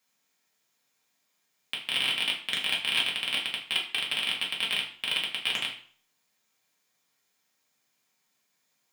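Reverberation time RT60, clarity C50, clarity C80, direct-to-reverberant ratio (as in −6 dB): 0.50 s, 8.0 dB, 12.0 dB, −3.5 dB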